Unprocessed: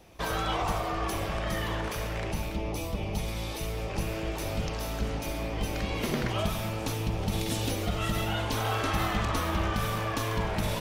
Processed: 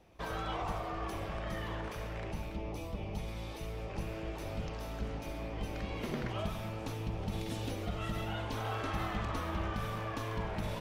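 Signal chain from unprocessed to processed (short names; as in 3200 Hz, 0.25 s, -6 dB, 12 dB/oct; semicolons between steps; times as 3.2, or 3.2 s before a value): high shelf 4200 Hz -9.5 dB; gain -7 dB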